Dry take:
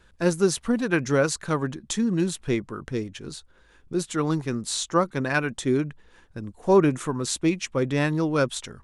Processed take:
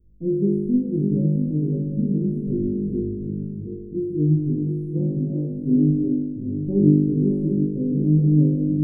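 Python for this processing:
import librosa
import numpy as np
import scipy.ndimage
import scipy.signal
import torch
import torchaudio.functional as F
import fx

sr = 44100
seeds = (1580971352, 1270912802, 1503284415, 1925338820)

y = fx.reverse_delay_fb(x, sr, ms=369, feedback_pct=59, wet_db=-5.0)
y = scipy.signal.sosfilt(scipy.signal.cheby2(4, 70, [1200.0, 8000.0], 'bandstop', fs=sr, output='sos'), y)
y = fx.room_flutter(y, sr, wall_m=3.4, rt60_s=1.2)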